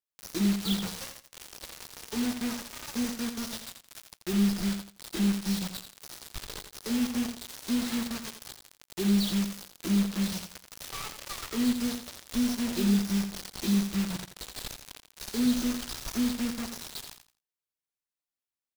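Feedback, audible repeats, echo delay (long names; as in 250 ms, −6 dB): 22%, 3, 85 ms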